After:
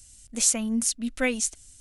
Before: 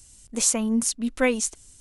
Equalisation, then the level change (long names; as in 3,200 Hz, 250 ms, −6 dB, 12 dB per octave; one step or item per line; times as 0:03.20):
graphic EQ with 15 bands 160 Hz −6 dB, 400 Hz −9 dB, 1,000 Hz −9 dB
0.0 dB